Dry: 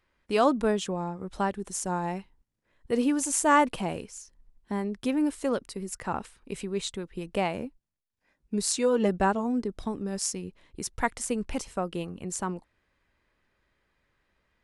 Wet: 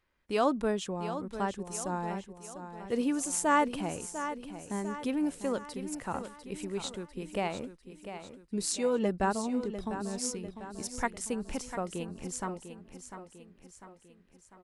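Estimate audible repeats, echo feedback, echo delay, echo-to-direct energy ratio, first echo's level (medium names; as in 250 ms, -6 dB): 5, 50%, 698 ms, -9.0 dB, -10.5 dB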